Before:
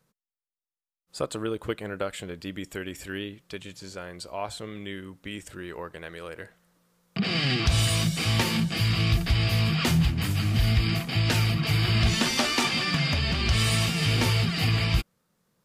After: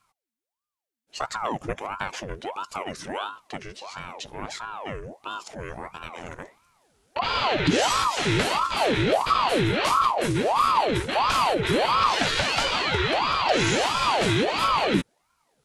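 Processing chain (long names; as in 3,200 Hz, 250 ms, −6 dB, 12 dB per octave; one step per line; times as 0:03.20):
flat-topped bell 700 Hz −8.5 dB 1.1 octaves
in parallel at 0 dB: brickwall limiter −19.5 dBFS, peak gain reduction 7.5 dB
on the sum: formants moved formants −5 semitones
ring modulator whose carrier an LFO sweeps 720 Hz, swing 70%, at 1.5 Hz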